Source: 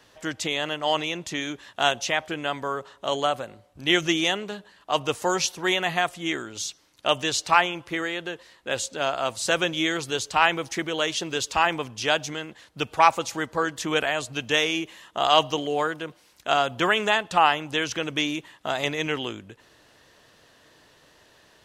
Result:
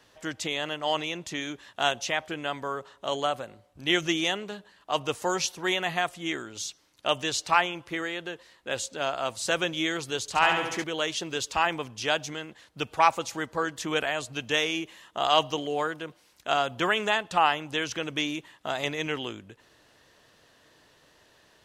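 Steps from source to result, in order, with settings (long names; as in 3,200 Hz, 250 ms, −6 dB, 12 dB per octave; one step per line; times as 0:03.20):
0:10.21–0:10.84: flutter between parallel walls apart 12 metres, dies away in 0.86 s
level −3.5 dB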